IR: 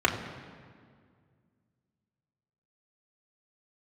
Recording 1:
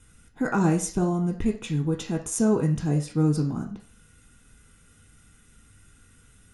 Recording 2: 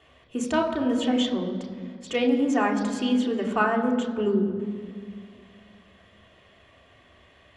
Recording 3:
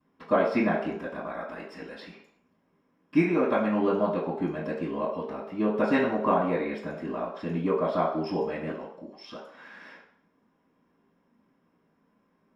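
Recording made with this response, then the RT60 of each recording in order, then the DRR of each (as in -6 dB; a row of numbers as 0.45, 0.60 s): 2; 0.40 s, 2.0 s, not exponential; 3.0, -1.5, -17.0 dB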